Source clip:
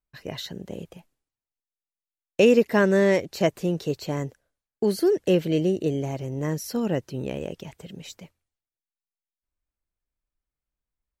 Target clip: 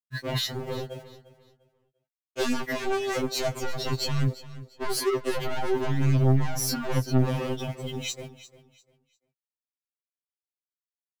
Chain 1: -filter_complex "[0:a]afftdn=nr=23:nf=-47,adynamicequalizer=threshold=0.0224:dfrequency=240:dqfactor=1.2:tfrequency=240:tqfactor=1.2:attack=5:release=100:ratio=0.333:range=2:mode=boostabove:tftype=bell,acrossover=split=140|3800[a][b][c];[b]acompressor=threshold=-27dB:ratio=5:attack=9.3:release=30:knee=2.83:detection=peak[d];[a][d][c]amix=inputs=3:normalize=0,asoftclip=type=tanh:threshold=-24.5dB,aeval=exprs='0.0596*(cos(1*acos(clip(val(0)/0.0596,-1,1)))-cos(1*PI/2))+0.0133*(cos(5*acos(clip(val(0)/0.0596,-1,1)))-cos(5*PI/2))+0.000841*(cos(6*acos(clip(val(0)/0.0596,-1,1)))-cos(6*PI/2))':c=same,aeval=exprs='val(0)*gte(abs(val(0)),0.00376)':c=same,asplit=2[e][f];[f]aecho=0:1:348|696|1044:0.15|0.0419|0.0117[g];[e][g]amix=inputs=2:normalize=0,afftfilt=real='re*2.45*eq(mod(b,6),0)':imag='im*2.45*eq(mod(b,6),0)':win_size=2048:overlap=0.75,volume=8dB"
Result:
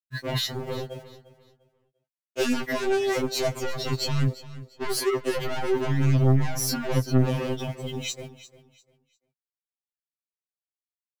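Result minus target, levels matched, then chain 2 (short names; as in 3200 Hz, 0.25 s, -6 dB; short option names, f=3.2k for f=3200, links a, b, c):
soft clip: distortion -7 dB
-filter_complex "[0:a]afftdn=nr=23:nf=-47,adynamicequalizer=threshold=0.0224:dfrequency=240:dqfactor=1.2:tfrequency=240:tqfactor=1.2:attack=5:release=100:ratio=0.333:range=2:mode=boostabove:tftype=bell,acrossover=split=140|3800[a][b][c];[b]acompressor=threshold=-27dB:ratio=5:attack=9.3:release=30:knee=2.83:detection=peak[d];[a][d][c]amix=inputs=3:normalize=0,asoftclip=type=tanh:threshold=-34dB,aeval=exprs='0.0596*(cos(1*acos(clip(val(0)/0.0596,-1,1)))-cos(1*PI/2))+0.0133*(cos(5*acos(clip(val(0)/0.0596,-1,1)))-cos(5*PI/2))+0.000841*(cos(6*acos(clip(val(0)/0.0596,-1,1)))-cos(6*PI/2))':c=same,aeval=exprs='val(0)*gte(abs(val(0)),0.00376)':c=same,asplit=2[e][f];[f]aecho=0:1:348|696|1044:0.15|0.0419|0.0117[g];[e][g]amix=inputs=2:normalize=0,afftfilt=real='re*2.45*eq(mod(b,6),0)':imag='im*2.45*eq(mod(b,6),0)':win_size=2048:overlap=0.75,volume=8dB"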